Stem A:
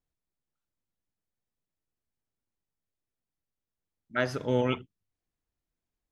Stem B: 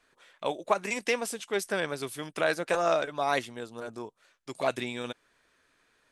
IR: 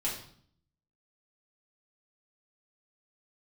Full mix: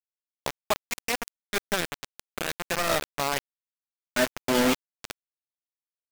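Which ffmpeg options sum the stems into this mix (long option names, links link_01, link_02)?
-filter_complex "[0:a]aecho=1:1:3.3:0.97,flanger=delay=0.1:depth=5.4:regen=53:speed=0.57:shape=triangular,volume=2.5dB,asplit=3[link_01][link_02][link_03];[link_02]volume=-16dB[link_04];[1:a]alimiter=limit=-16.5dB:level=0:latency=1:release=96,aphaser=in_gain=1:out_gain=1:delay=3.5:decay=0.27:speed=1.7:type=sinusoidal,volume=0dB[link_05];[link_03]apad=whole_len=269834[link_06];[link_05][link_06]sidechaincompress=threshold=-32dB:ratio=8:attack=12:release=430[link_07];[2:a]atrim=start_sample=2205[link_08];[link_04][link_08]afir=irnorm=-1:irlink=0[link_09];[link_01][link_07][link_09]amix=inputs=3:normalize=0,acrusher=bits=3:mix=0:aa=0.000001"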